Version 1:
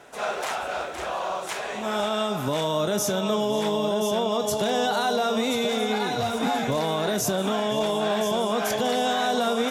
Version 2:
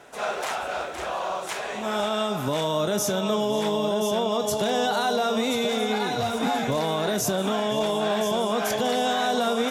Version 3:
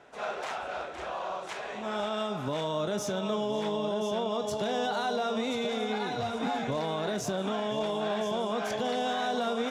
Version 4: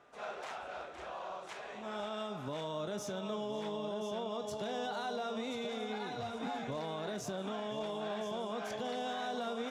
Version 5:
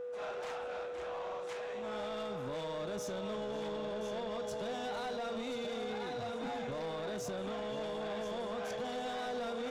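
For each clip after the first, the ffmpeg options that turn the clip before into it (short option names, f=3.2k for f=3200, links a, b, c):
-af anull
-af "adynamicsmooth=sensitivity=1.5:basefreq=5.7k,volume=-6dB"
-af "aeval=exprs='val(0)+0.00112*sin(2*PI*1200*n/s)':c=same,volume=-8dB"
-af "aeval=exprs='val(0)+0.01*sin(2*PI*490*n/s)':c=same,asoftclip=type=tanh:threshold=-36dB,volume=2dB"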